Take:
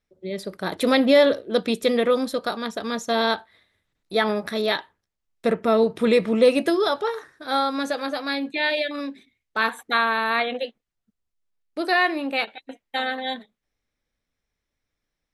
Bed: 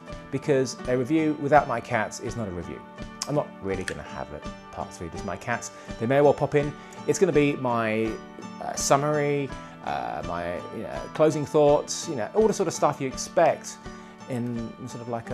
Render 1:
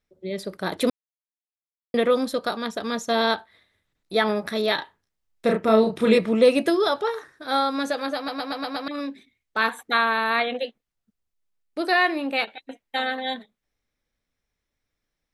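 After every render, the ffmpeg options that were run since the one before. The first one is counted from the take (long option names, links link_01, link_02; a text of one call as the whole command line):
ffmpeg -i in.wav -filter_complex "[0:a]asettb=1/sr,asplit=3[link_01][link_02][link_03];[link_01]atrim=end=4.754[link_04];[link_02]atrim=start=4.75:end=6.18,asetpts=PTS-STARTPTS,afade=type=in:duration=0.004:curve=qsin,afade=type=out:start_time=1.426:duration=0.004:curve=qsin,asplit=2[link_05][link_06];[link_06]adelay=32,volume=-4dB[link_07];[link_05][link_07]amix=inputs=2:normalize=0,atrim=end_sample=63063[link_08];[link_03]atrim=start=6.176[link_09];[link_04][link_08]acrossfade=duration=0.004:curve1=hsin:curve2=qsin[link_10];[link_10][link_09]acrossfade=duration=0.004:curve1=qsin:curve2=hsin,asplit=9[link_11][link_12][link_13][link_14][link_15][link_16][link_17][link_18][link_19];[link_11]atrim=end=0.9,asetpts=PTS-STARTPTS,afade=type=out:start_time=0.896:duration=0.004:curve=hsin[link_20];[link_12]atrim=start=0.9:end=1.94,asetpts=PTS-STARTPTS,volume=0[link_21];[link_13]atrim=start=1.94:end=8.282,asetpts=PTS-STARTPTS,afade=type=in:duration=0.004:curve=hsin[link_22];[link_14]atrim=start=8.158:end=8.282[link_23];[link_15]atrim=start=8.158:end=8.282[link_24];[link_16]atrim=start=8.158:end=8.282[link_25];[link_17]atrim=start=8.158:end=8.282[link_26];[link_18]atrim=start=8.158:end=8.282[link_27];[link_19]atrim=start=8.878[link_28];[link_20][link_21][link_22]concat=n=3:v=0:a=1[link_29];[link_29][link_23]acrossfade=duration=0.004:curve1=hsin:curve2=hsin[link_30];[link_30][link_24]acrossfade=duration=0.004:curve1=hsin:curve2=hsin[link_31];[link_31][link_25]acrossfade=duration=0.004:curve1=hsin:curve2=hsin[link_32];[link_32][link_26]acrossfade=duration=0.004:curve1=hsin:curve2=hsin[link_33];[link_33][link_27]acrossfade=duration=0.004:curve1=hsin:curve2=hsin[link_34];[link_34][link_28]acrossfade=duration=0.004:curve1=hsin:curve2=hsin" out.wav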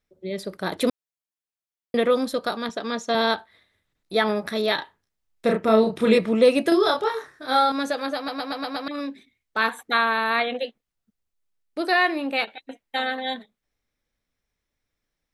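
ffmpeg -i in.wav -filter_complex "[0:a]asettb=1/sr,asplit=3[link_01][link_02][link_03];[link_01]atrim=end=2.694[link_04];[link_02]atrim=start=2.69:end=3.15,asetpts=PTS-STARTPTS,afade=type=in:duration=0.004:curve=qsin,afade=type=out:start_time=0.456:duration=0.004:curve=qsin,highpass=180,lowpass=6900[link_05];[link_03]atrim=start=3.146[link_06];[link_04][link_05]acrossfade=duration=0.004:curve1=hsin:curve2=qsin[link_07];[link_07][link_06]acrossfade=duration=0.004:curve1=qsin:curve2=hsin,asettb=1/sr,asplit=3[link_08][link_09][link_10];[link_08]atrim=end=6.694[link_11];[link_09]atrim=start=6.69:end=7.72,asetpts=PTS-STARTPTS,afade=type=in:duration=0.004:curve=qsin,afade=type=out:start_time=1.026:duration=0.004:curve=qsin,asplit=2[link_12][link_13];[link_13]adelay=27,volume=-2dB[link_14];[link_12][link_14]amix=inputs=2:normalize=0,atrim=end_sample=45423[link_15];[link_10]atrim=start=7.716[link_16];[link_11][link_15]acrossfade=duration=0.004:curve1=hsin:curve2=qsin[link_17];[link_17][link_16]acrossfade=duration=0.004:curve1=qsin:curve2=hsin" out.wav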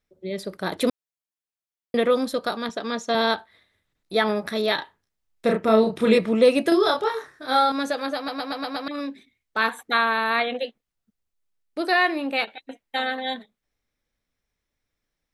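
ffmpeg -i in.wav -af anull out.wav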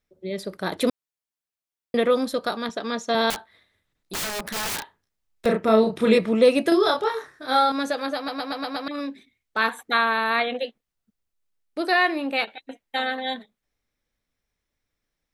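ffmpeg -i in.wav -filter_complex "[0:a]asettb=1/sr,asplit=3[link_01][link_02][link_03];[link_01]atrim=end=3.304[link_04];[link_02]atrim=start=3.3:end=5.46,asetpts=PTS-STARTPTS,afade=type=in:duration=0.004:curve=qsin,afade=type=out:start_time=2.156:duration=0.004:curve=qsin,aeval=exprs='(mod(15*val(0)+1,2)-1)/15':channel_layout=same[link_05];[link_03]atrim=start=5.456[link_06];[link_04][link_05]acrossfade=duration=0.004:curve1=hsin:curve2=qsin[link_07];[link_07][link_06]acrossfade=duration=0.004:curve1=qsin:curve2=hsin" out.wav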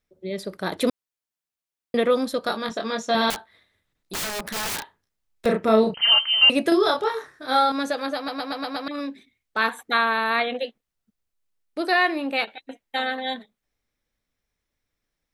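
ffmpeg -i in.wav -filter_complex "[0:a]asettb=1/sr,asplit=3[link_01][link_02][link_03];[link_01]atrim=end=2.424[link_04];[link_02]atrim=start=2.42:end=3.29,asetpts=PTS-STARTPTS,afade=type=in:duration=0.004:curve=qsin,afade=type=out:start_time=0.866:duration=0.004:curve=qsin,asplit=2[link_05][link_06];[link_06]adelay=23,volume=-4.5dB[link_07];[link_05][link_07]amix=inputs=2:normalize=0,atrim=end_sample=38367[link_08];[link_03]atrim=start=3.286[link_09];[link_04][link_08]acrossfade=duration=0.004:curve1=hsin:curve2=qsin[link_10];[link_10][link_09]acrossfade=duration=0.004:curve1=qsin:curve2=hsin,asettb=1/sr,asplit=3[link_11][link_12][link_13];[link_11]atrim=end=5.944[link_14];[link_12]atrim=start=5.94:end=6.5,asetpts=PTS-STARTPTS,afade=type=in:duration=0.004:curve=qsin,afade=type=out:start_time=0.556:duration=0.004:curve=qsin,lowpass=frequency=2800:width_type=q:width=0.5098,lowpass=frequency=2800:width_type=q:width=0.6013,lowpass=frequency=2800:width_type=q:width=0.9,lowpass=frequency=2800:width_type=q:width=2.563,afreqshift=-3300[link_15];[link_13]atrim=start=6.496[link_16];[link_14][link_15]acrossfade=duration=0.004:curve1=hsin:curve2=qsin[link_17];[link_17][link_16]acrossfade=duration=0.004:curve1=qsin:curve2=hsin" out.wav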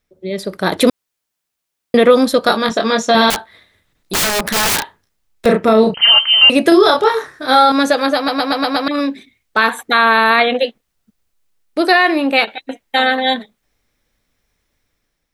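ffmpeg -i in.wav -af "dynaudnorm=framelen=170:gausssize=7:maxgain=6dB,alimiter=level_in=7dB:limit=-1dB:release=50:level=0:latency=1" out.wav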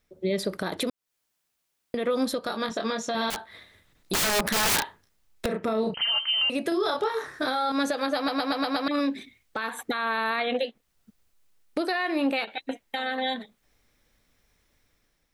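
ffmpeg -i in.wav -af "acompressor=threshold=-19dB:ratio=6,alimiter=limit=-17dB:level=0:latency=1:release=400" out.wav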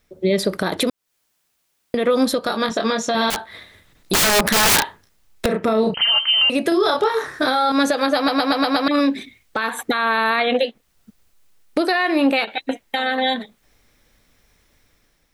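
ffmpeg -i in.wav -af "volume=8.5dB" out.wav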